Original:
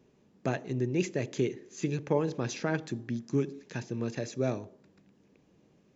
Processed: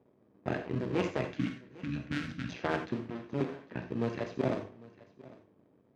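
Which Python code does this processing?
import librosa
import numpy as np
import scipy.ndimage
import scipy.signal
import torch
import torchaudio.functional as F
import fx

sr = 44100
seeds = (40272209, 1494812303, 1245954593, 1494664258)

p1 = fx.cycle_switch(x, sr, every=2, mode='muted')
p2 = fx.env_lowpass(p1, sr, base_hz=1000.0, full_db=-28.0)
p3 = fx.spec_box(p2, sr, start_s=1.27, length_s=1.25, low_hz=320.0, high_hz=1300.0, gain_db=-26)
p4 = fx.sample_hold(p3, sr, seeds[0], rate_hz=1400.0, jitter_pct=0)
p5 = p3 + F.gain(torch.from_numpy(p4), -11.5).numpy()
p6 = fx.bandpass_edges(p5, sr, low_hz=130.0, high_hz=3500.0)
p7 = p6 + fx.echo_single(p6, sr, ms=801, db=-21.0, dry=0)
y = fx.rev_gated(p7, sr, seeds[1], gate_ms=110, shape='flat', drr_db=5.0)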